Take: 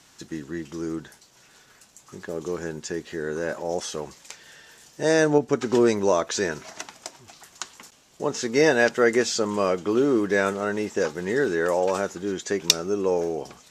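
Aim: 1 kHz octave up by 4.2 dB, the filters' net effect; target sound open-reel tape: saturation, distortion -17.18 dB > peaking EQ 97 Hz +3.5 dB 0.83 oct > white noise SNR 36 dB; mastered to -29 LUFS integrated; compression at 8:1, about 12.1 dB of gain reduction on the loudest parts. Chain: peaking EQ 1 kHz +5.5 dB; compression 8:1, threshold -27 dBFS; saturation -22.5 dBFS; peaking EQ 97 Hz +3.5 dB 0.83 oct; white noise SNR 36 dB; trim +5 dB

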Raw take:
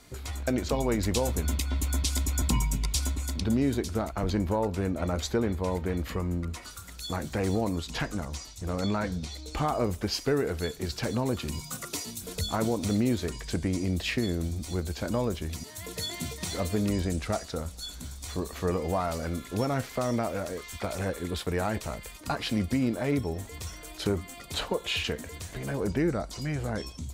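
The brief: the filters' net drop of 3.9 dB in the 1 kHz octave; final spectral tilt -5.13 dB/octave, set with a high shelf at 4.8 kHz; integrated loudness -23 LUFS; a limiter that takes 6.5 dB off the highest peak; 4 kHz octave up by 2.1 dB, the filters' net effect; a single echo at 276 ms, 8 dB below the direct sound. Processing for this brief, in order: peaking EQ 1 kHz -5.5 dB; peaking EQ 4 kHz +5.5 dB; treble shelf 4.8 kHz -5.5 dB; peak limiter -21.5 dBFS; delay 276 ms -8 dB; trim +9 dB

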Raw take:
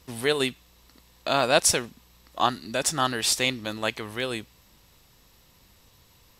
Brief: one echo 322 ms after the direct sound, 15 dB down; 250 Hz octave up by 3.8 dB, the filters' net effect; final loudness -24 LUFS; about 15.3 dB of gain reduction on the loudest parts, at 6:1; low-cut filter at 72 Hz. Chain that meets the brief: high-pass 72 Hz; peaking EQ 250 Hz +4.5 dB; compression 6:1, threshold -32 dBFS; delay 322 ms -15 dB; trim +12 dB

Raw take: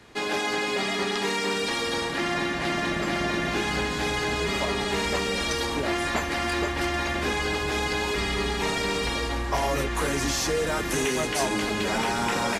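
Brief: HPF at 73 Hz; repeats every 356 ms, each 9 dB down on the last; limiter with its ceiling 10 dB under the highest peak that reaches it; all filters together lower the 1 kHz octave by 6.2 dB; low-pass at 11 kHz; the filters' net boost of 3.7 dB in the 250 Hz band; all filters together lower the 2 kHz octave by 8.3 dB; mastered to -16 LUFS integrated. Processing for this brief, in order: high-pass 73 Hz; low-pass 11 kHz; peaking EQ 250 Hz +5.5 dB; peaking EQ 1 kHz -6.5 dB; peaking EQ 2 kHz -8.5 dB; peak limiter -23 dBFS; feedback delay 356 ms, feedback 35%, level -9 dB; trim +15 dB

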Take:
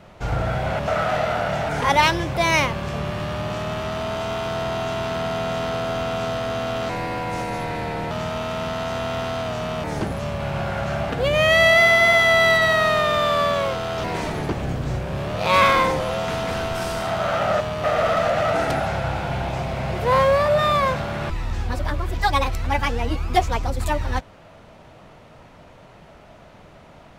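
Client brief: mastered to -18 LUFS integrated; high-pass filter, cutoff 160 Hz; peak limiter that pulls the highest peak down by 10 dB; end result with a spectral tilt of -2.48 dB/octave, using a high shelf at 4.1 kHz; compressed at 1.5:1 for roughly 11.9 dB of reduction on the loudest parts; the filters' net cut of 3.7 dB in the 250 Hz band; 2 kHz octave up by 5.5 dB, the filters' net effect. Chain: high-pass 160 Hz; peaking EQ 250 Hz -3.5 dB; peaking EQ 2 kHz +7.5 dB; treble shelf 4.1 kHz -8 dB; compression 1.5:1, threshold -43 dBFS; trim +14 dB; peak limiter -8.5 dBFS

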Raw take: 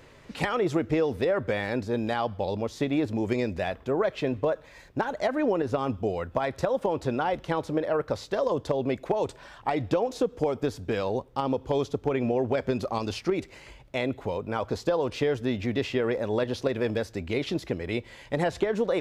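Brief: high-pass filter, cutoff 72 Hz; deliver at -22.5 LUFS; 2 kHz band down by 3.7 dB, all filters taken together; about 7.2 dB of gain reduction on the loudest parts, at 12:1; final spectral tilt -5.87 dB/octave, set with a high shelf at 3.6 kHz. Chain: high-pass 72 Hz; peaking EQ 2 kHz -3.5 dB; treble shelf 3.6 kHz -4.5 dB; compression 12:1, threshold -28 dBFS; trim +12 dB

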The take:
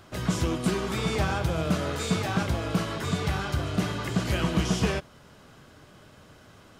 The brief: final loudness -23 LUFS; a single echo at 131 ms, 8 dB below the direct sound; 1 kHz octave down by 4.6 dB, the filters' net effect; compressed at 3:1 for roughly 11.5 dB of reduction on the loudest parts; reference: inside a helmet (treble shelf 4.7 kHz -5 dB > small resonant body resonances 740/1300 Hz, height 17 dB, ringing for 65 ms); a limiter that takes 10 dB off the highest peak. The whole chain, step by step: peaking EQ 1 kHz -6 dB; compression 3:1, threshold -37 dBFS; peak limiter -33 dBFS; treble shelf 4.7 kHz -5 dB; delay 131 ms -8 dB; small resonant body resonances 740/1300 Hz, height 17 dB, ringing for 65 ms; trim +18 dB

